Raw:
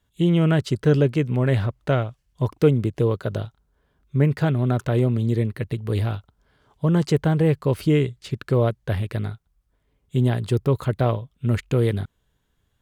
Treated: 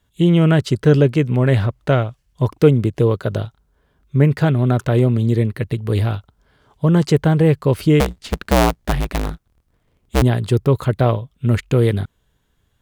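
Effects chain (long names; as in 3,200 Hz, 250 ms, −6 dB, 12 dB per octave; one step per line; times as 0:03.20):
0:08.00–0:10.22: sub-harmonics by changed cycles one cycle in 2, inverted
level +5 dB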